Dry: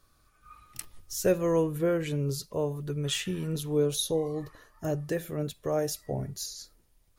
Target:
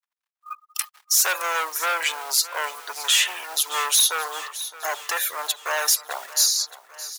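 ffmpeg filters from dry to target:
-af "asoftclip=type=tanh:threshold=0.0299,acompressor=mode=upward:threshold=0.00708:ratio=2.5,agate=range=0.112:threshold=0.00501:ratio=16:detection=peak,afftfilt=real='re*gte(hypot(re,im),0.00224)':imag='im*gte(hypot(re,im),0.00224)':win_size=1024:overlap=0.75,acrusher=bits=7:mode=log:mix=0:aa=0.000001,highpass=f=920:w=0.5412,highpass=f=920:w=1.3066,highshelf=f=11000:g=3.5,aecho=1:1:616|1232|1848|2464|3080:0.15|0.0823|0.0453|0.0249|0.0137,alimiter=level_in=25.1:limit=0.891:release=50:level=0:latency=1,volume=0.398"

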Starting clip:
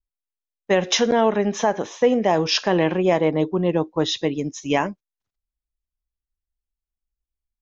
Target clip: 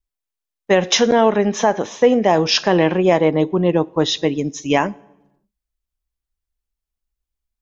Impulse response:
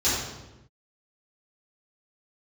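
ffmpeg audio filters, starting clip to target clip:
-filter_complex "[0:a]asplit=2[s0][s1];[1:a]atrim=start_sample=2205[s2];[s1][s2]afir=irnorm=-1:irlink=0,volume=0.0126[s3];[s0][s3]amix=inputs=2:normalize=0,volume=1.58"

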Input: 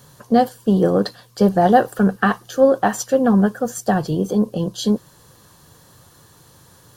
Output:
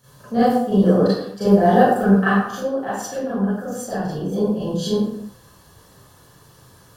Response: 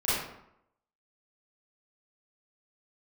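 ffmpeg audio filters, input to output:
-filter_complex "[0:a]asettb=1/sr,asplit=3[s0][s1][s2];[s0]atrim=end=2.294[s3];[s1]atrim=start=2.29:end=4.32,asetpts=PTS-STARTPTS,afade=t=in:d=0.004:c=qsin,afade=t=out:st=2.026:d=0.004:c=qsin,acompressor=threshold=0.0708:ratio=3[s4];[s2]atrim=start=4.316[s5];[s3][s4]acrossfade=d=0.004:c1=hsin:c2=qsin[s6];[s6][s5]acrossfade=d=0.004:c1=qsin:c2=hsin[s7];[1:a]atrim=start_sample=2205,afade=t=out:st=0.43:d=0.01,atrim=end_sample=19404[s8];[s7][s8]afir=irnorm=-1:irlink=0,volume=0.299"

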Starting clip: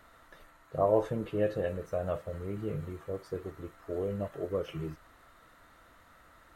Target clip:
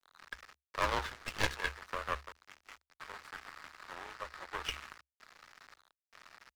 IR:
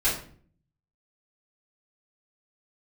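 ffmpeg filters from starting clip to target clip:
-filter_complex "[0:a]aeval=exprs='if(lt(val(0),0),0.447*val(0),val(0))':c=same,highpass=f=1300:w=0.5412,highpass=f=1300:w=1.3066,afwtdn=0.000891,asettb=1/sr,asplit=3[s0][s1][s2];[s0]atrim=end=2.324[s3];[s1]atrim=start=2.32:end=3,asetpts=PTS-STARTPTS,afade=t=in:d=0.004:c=qsin,afade=t=out:st=0.676:d=0.004:c=qsin,agate=range=0.0224:threshold=0.002:ratio=3:detection=peak[s4];[s2]atrim=start=2.996[s5];[s3][s4]acrossfade=d=0.004:c1=hsin:c2=qsin[s6];[s6][s5]acrossfade=d=0.004:c1=qsin:c2=hsin,asettb=1/sr,asplit=3[s7][s8][s9];[s7]atrim=end=3.934[s10];[s8]atrim=start=3.93:end=4.63,asetpts=PTS-STARTPTS,afade=t=in:d=0.004:c=qsin,afade=t=out:st=0.696:d=0.004:c=qsin,aemphasis=mode=reproduction:type=50fm[s11];[s9]atrim=start=4.626[s12];[s10][s11]acrossfade=d=0.004:c1=hsin:c2=qsin[s13];[s13][s12]acrossfade=d=0.004:c1=qsin:c2=hsin,asplit=2[s14][s15];[s15]acompressor=threshold=0.00126:ratio=6,volume=1.12[s16];[s14][s16]amix=inputs=2:normalize=0,aeval=exprs='sgn(val(0))*max(abs(val(0))-0.00126,0)':c=same,aeval=exprs='0.0355*(cos(1*acos(clip(val(0)/0.0355,-1,1)))-cos(1*PI/2))+0.00501*(cos(6*acos(clip(val(0)/0.0355,-1,1)))-cos(6*PI/2))':c=same,afreqshift=-71,asettb=1/sr,asplit=3[s17][s18][s19];[s17]atrim=end=1.094[s20];[s18]atrim=start=1.09:end=1.56,asetpts=PTS-STARTPTS,afade=t=in:d=0.004:c=qsin,afade=t=out:st=0.466:d=0.004:c=qsin,aeval=exprs='0.0251*(cos(1*acos(clip(val(0)/0.0251,-1,1)))-cos(1*PI/2))+0.0112*(cos(2*acos(clip(val(0)/0.0251,-1,1)))-cos(2*PI/2))+0.00158*(cos(3*acos(clip(val(0)/0.0251,-1,1)))-cos(3*PI/2))+0.00708*(cos(6*acos(clip(val(0)/0.0251,-1,1)))-cos(6*PI/2))+0.00158*(cos(8*acos(clip(val(0)/0.0251,-1,1)))-cos(8*PI/2))':c=same[s21];[s19]atrim=start=1.556[s22];[s20][s21]acrossfade=d=0.004:c1=hsin:c2=qsin[s23];[s23][s22]acrossfade=d=0.004:c1=qsin:c2=hsin,volume=4.22"

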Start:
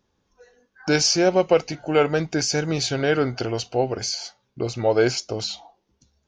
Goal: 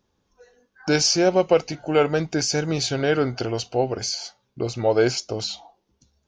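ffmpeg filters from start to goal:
-af "equalizer=f=1900:t=o:w=0.77:g=-2"

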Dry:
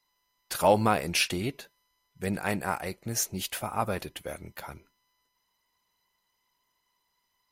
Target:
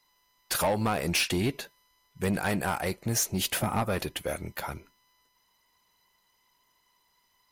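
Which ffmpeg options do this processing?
-filter_complex "[0:a]asettb=1/sr,asplit=3[s0][s1][s2];[s0]atrim=end=3.434[s3];[s1]atrim=start=3.43:end=3.83,asetpts=PTS-STARTPTS,afade=t=in:d=0.004:c=qsin,afade=t=out:st=0.396:d=0.004:c=qsin,equalizer=f=180:t=o:w=2.4:g=9[s4];[s2]atrim=start=3.826[s5];[s3][s4]acrossfade=d=0.004:c1=hsin:c2=qsin[s6];[s6][s5]acrossfade=d=0.004:c1=qsin:c2=hsin,acompressor=threshold=0.0501:ratio=6,asoftclip=type=tanh:threshold=0.0473,volume=2.11"

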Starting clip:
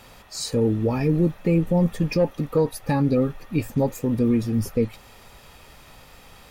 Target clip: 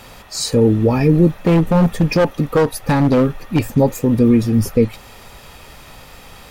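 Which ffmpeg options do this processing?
-filter_complex "[0:a]asettb=1/sr,asplit=3[s0][s1][s2];[s0]atrim=end=1.324[s3];[s1]atrim=start=1.32:end=3.61,asetpts=PTS-STARTPTS,afade=t=in:d=0.004:c=qsin,afade=t=out:st=2.286:d=0.004:c=qsin,aeval=exprs='0.178*(abs(mod(val(0)/0.178+3,4)-2)-1)':c=same[s4];[s2]atrim=start=3.606[s5];[s3][s4]acrossfade=d=0.004:c1=hsin:c2=qsin[s6];[s6][s5]acrossfade=d=0.004:c1=qsin:c2=hsin,volume=2.51"

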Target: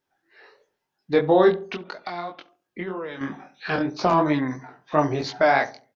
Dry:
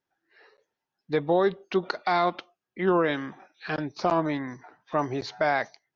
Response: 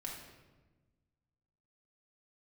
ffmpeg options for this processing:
-filter_complex "[0:a]asettb=1/sr,asplit=3[s0][s1][s2];[s0]atrim=end=1.604[s3];[s1]atrim=start=1.6:end=3.21,asetpts=PTS-STARTPTS,afade=t=in:d=0.004:c=qsin,afade=t=out:st=1.606:d=0.004:c=qsin,acompressor=threshold=0.02:ratio=12[s4];[s2]atrim=start=3.206[s5];[s3][s4]acrossfade=d=0.004:c1=hsin:c2=qsin[s6];[s6][s5]acrossfade=d=0.004:c1=qsin:c2=hsin,flanger=delay=20:depth=3.3:speed=3,asplit=2[s7][s8];[s8]adelay=69,lowpass=f=830:p=1,volume=0.224,asplit=2[s9][s10];[s10]adelay=69,lowpass=f=830:p=1,volume=0.42,asplit=2[s11][s12];[s12]adelay=69,lowpass=f=830:p=1,volume=0.42,asplit=2[s13][s14];[s14]adelay=69,lowpass=f=830:p=1,volume=0.42[s15];[s7][s9][s11][s13][s15]amix=inputs=5:normalize=0,volume=2.66"

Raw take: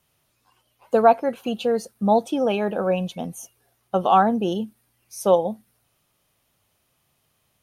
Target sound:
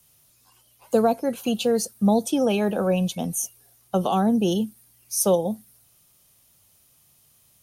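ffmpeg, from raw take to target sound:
-filter_complex "[0:a]bass=f=250:g=5,treble=f=4000:g=13,acrossover=split=390|440|4300[s0][s1][s2][s3];[s2]acompressor=threshold=0.0501:ratio=6[s4];[s0][s1][s4][s3]amix=inputs=4:normalize=0"

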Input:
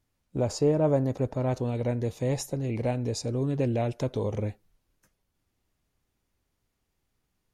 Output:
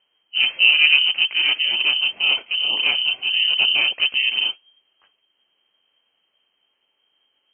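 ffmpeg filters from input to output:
-filter_complex "[0:a]asplit=2[s0][s1];[s1]asetrate=55563,aresample=44100,atempo=0.793701,volume=1[s2];[s0][s2]amix=inputs=2:normalize=0,lowpass=f=2700:t=q:w=0.5098,lowpass=f=2700:t=q:w=0.6013,lowpass=f=2700:t=q:w=0.9,lowpass=f=2700:t=q:w=2.563,afreqshift=-3200,equalizer=f=340:t=o:w=2.7:g=10,volume=1.68"

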